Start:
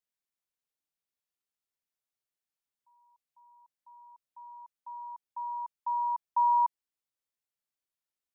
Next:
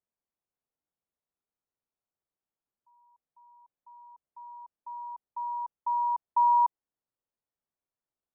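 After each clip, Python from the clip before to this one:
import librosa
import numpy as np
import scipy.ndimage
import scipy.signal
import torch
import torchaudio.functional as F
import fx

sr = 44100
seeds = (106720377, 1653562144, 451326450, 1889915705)

y = scipy.signal.sosfilt(scipy.signal.butter(2, 1000.0, 'lowpass', fs=sr, output='sos'), x)
y = F.gain(torch.from_numpy(y), 5.0).numpy()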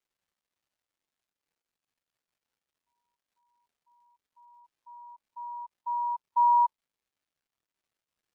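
y = fx.dmg_crackle(x, sr, seeds[0], per_s=450.0, level_db=-43.0)
y = fx.spectral_expand(y, sr, expansion=1.5)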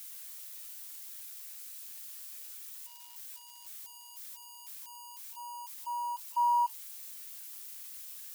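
y = x + 0.5 * 10.0 ** (-31.5 / 20.0) * np.diff(np.sign(x), prepend=np.sign(x[:1]))
y = F.gain(torch.from_numpy(y), -5.5).numpy()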